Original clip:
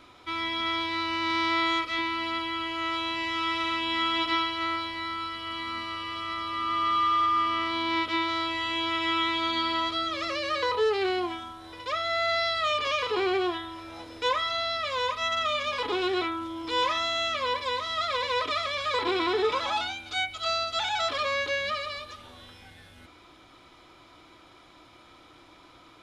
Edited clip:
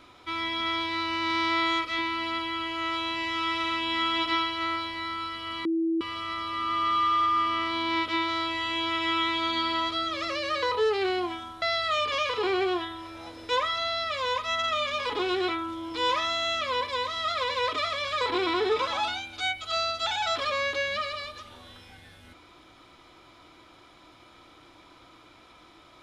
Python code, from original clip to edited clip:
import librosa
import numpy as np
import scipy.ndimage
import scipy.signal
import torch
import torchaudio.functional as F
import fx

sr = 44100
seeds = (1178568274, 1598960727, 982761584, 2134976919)

y = fx.edit(x, sr, fx.bleep(start_s=5.65, length_s=0.36, hz=328.0, db=-23.0),
    fx.cut(start_s=11.62, length_s=0.73), tone=tone)